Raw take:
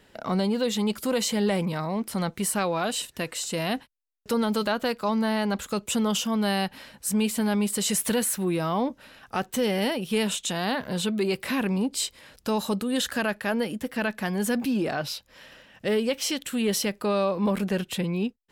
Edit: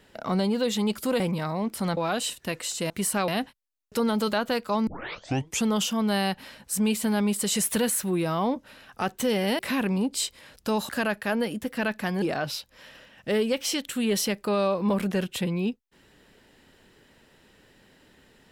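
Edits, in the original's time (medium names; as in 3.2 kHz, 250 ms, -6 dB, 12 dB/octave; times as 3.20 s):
1.20–1.54 s: delete
2.31–2.69 s: move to 3.62 s
5.21 s: tape start 0.78 s
9.93–11.39 s: delete
12.69–13.08 s: delete
14.41–14.79 s: delete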